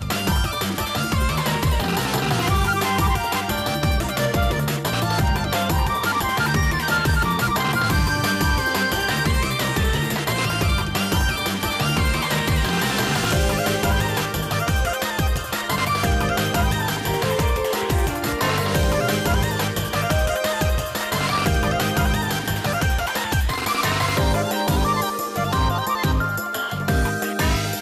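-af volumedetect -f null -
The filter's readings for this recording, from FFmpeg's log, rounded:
mean_volume: -21.0 dB
max_volume: -10.2 dB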